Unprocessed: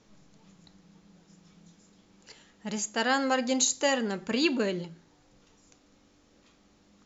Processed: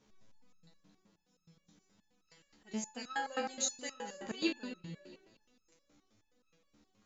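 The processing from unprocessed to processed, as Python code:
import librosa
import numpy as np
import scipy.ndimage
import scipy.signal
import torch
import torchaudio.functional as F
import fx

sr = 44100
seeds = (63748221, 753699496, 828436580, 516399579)

y = fx.echo_alternate(x, sr, ms=112, hz=2100.0, feedback_pct=66, wet_db=-9.5)
y = fx.resonator_held(y, sr, hz=9.5, low_hz=72.0, high_hz=1300.0)
y = F.gain(torch.from_numpy(y), 1.0).numpy()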